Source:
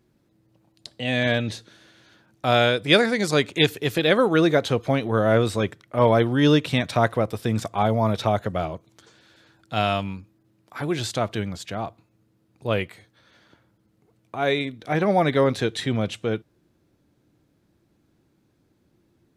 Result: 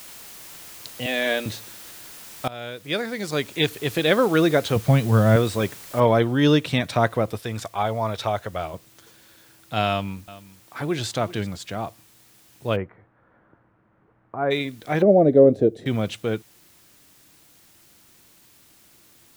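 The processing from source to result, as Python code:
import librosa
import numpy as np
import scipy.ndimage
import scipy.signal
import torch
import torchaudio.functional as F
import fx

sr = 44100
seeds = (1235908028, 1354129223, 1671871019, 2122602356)

y = fx.highpass(x, sr, hz=280.0, slope=24, at=(1.06, 1.46))
y = fx.low_shelf_res(y, sr, hz=230.0, db=8.0, q=1.5, at=(4.76, 5.36))
y = fx.noise_floor_step(y, sr, seeds[0], at_s=6.0, before_db=-42, after_db=-55, tilt_db=0.0)
y = fx.peak_eq(y, sr, hz=200.0, db=-9.5, octaves=2.1, at=(7.39, 8.74))
y = fx.echo_single(y, sr, ms=387, db=-17.5, at=(9.89, 11.47))
y = fx.lowpass(y, sr, hz=1500.0, slope=24, at=(12.75, 14.5), fade=0.02)
y = fx.curve_eq(y, sr, hz=(130.0, 300.0, 620.0, 930.0, 3300.0, 5300.0), db=(0, 7, 7, -16, -23, -19), at=(15.02, 15.86))
y = fx.edit(y, sr, fx.fade_in_from(start_s=2.48, length_s=1.63, floor_db=-22.0), tone=tone)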